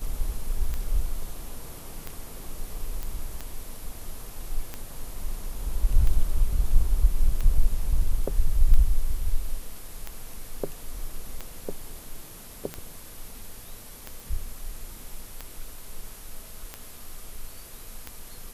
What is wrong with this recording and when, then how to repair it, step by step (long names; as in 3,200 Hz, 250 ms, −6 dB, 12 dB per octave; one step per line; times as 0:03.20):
scratch tick 45 rpm −18 dBFS
0:03.03: click
0:14.20: click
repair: click removal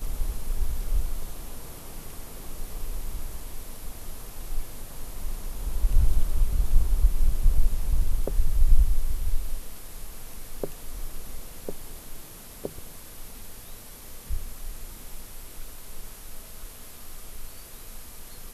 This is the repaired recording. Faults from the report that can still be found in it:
none of them is left